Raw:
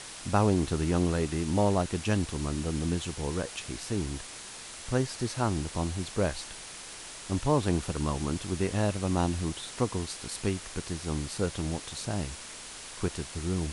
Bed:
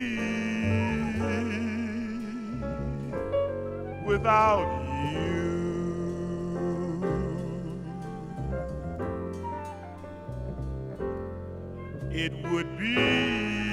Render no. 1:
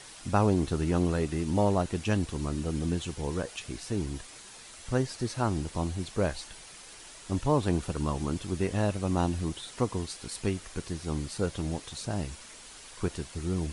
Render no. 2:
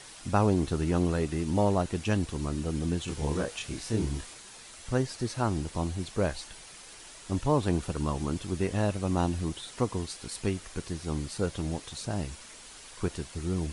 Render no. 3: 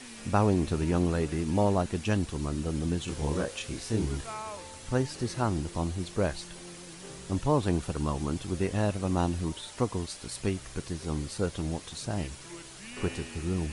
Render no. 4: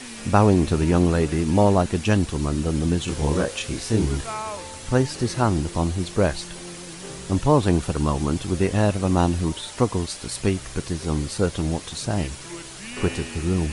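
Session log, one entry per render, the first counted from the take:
broadband denoise 7 dB, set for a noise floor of −44 dBFS
0:03.05–0:04.34: double-tracking delay 27 ms −2 dB
mix in bed −18 dB
level +8 dB

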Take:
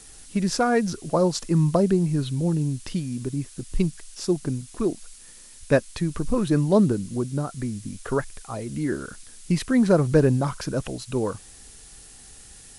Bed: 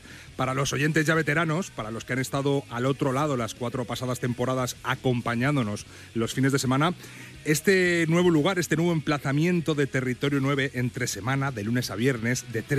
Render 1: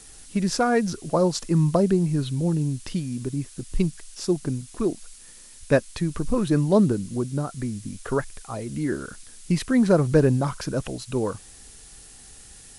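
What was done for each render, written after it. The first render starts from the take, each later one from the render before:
no processing that can be heard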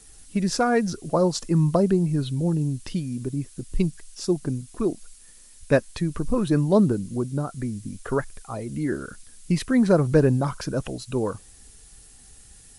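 broadband denoise 6 dB, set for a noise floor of −47 dBFS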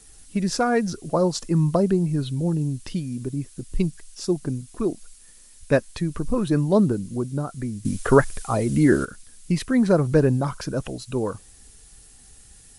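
0:07.85–0:09.05: clip gain +9.5 dB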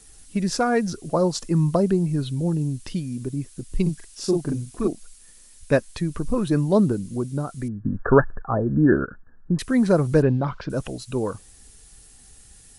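0:03.82–0:04.88: double-tracking delay 42 ms −2 dB
0:07.68–0:09.59: linear-phase brick-wall low-pass 1,800 Hz
0:10.22–0:10.70: low-pass filter 3,900 Hz 24 dB per octave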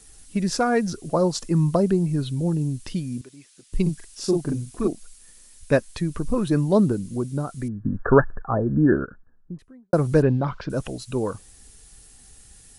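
0:03.21–0:03.73: resonant band-pass 3,200 Hz, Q 0.61
0:08.62–0:09.93: fade out and dull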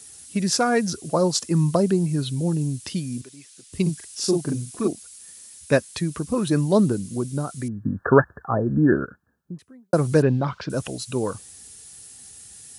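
high-pass filter 76 Hz 24 dB per octave
high-shelf EQ 2,900 Hz +8 dB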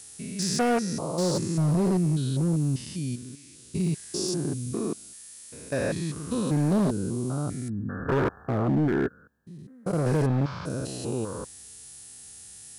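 spectrum averaged block by block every 200 ms
hard clipping −19.5 dBFS, distortion −14 dB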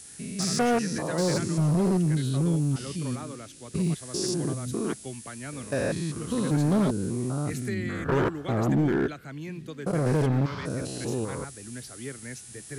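mix in bed −14.5 dB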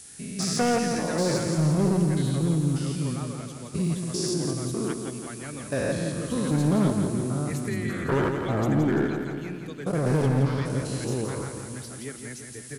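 repeating echo 169 ms, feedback 59%, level −6.5 dB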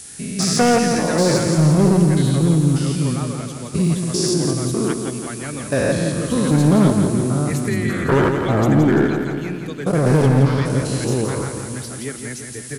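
level +8.5 dB

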